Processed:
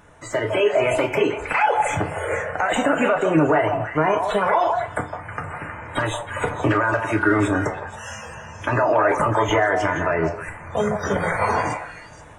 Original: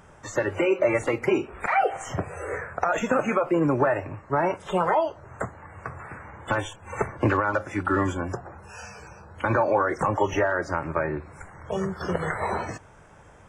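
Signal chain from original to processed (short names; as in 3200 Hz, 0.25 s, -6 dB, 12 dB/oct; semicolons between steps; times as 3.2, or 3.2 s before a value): AGC gain up to 6 dB; limiter -11.5 dBFS, peak gain reduction 6.5 dB; on a send: delay with a stepping band-pass 0.172 s, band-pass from 710 Hz, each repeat 1.4 oct, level -3 dB; on the sum: speed mistake 44.1 kHz file played as 48 kHz; FDN reverb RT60 0.31 s, low-frequency decay 0.85×, high-frequency decay 0.8×, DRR 5 dB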